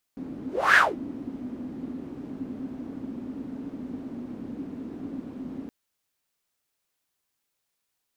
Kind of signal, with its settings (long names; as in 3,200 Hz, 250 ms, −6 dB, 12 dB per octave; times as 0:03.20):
pass-by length 5.52 s, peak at 0:00.59, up 0.30 s, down 0.22 s, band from 260 Hz, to 1,700 Hz, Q 7.3, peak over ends 20 dB